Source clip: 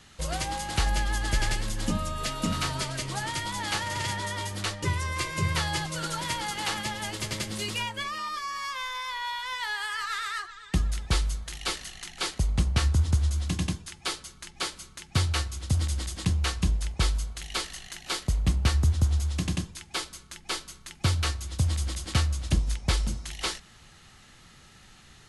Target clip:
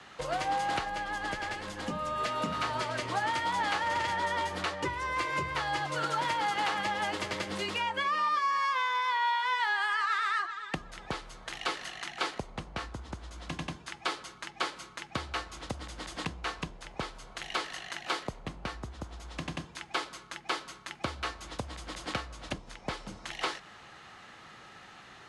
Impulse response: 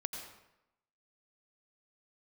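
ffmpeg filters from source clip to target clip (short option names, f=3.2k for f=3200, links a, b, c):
-af "acompressor=threshold=-32dB:ratio=6,afreqshift=-15,bandpass=f=880:t=q:w=0.62:csg=0,volume=8.5dB"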